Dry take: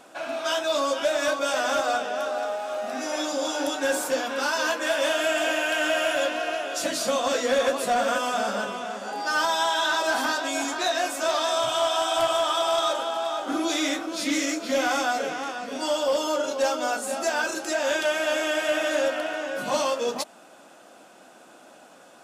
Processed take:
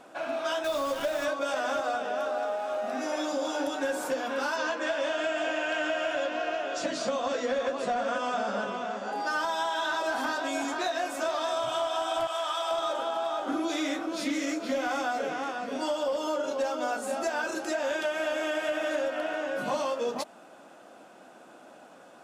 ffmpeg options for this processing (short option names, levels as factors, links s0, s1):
-filter_complex "[0:a]asettb=1/sr,asplit=3[s0][s1][s2];[s0]atrim=end=0.644[s3];[s1]atrim=start=0.64:end=1.25,asetpts=PTS-STARTPTS,afade=t=in:d=0.004:c=qsin,afade=t=out:st=0.606:d=0.004:c=qsin,acrusher=bits=6:dc=4:mix=0:aa=0.000001[s4];[s2]atrim=start=1.246[s5];[s3][s4]acrossfade=d=0.004:c1=hsin:c2=qsin[s6];[s6][s5]acrossfade=d=0.004:c1=qsin:c2=hsin,asettb=1/sr,asplit=3[s7][s8][s9];[s7]atrim=end=4.564[s10];[s8]atrim=start=4.56:end=9.12,asetpts=PTS-STARTPTS,afade=t=in:d=0.004:c=qsin,afade=t=out:st=4.556:d=0.004:c=qsin,lowpass=f=7500:w=0.5412,lowpass=f=7500:w=1.3066[s11];[s9]atrim=start=9.116[s12];[s10][s11]acrossfade=d=0.004:c1=hsin:c2=qsin[s13];[s13][s12]acrossfade=d=0.004:c1=qsin:c2=hsin,asettb=1/sr,asplit=3[s14][s15][s16];[s14]atrim=end=12.274[s17];[s15]atrim=start=12.27:end=12.71,asetpts=PTS-STARTPTS,afade=t=in:d=0.004:c=qsin,afade=t=out:st=0.436:d=0.004:c=qsin,highpass=f=1100:p=1[s18];[s16]atrim=start=12.706[s19];[s17][s18]acrossfade=d=0.004:c1=hsin:c2=qsin[s20];[s20][s19]acrossfade=d=0.004:c1=qsin:c2=hsin,highshelf=f=2800:g=-8.5,acompressor=threshold=0.0501:ratio=6"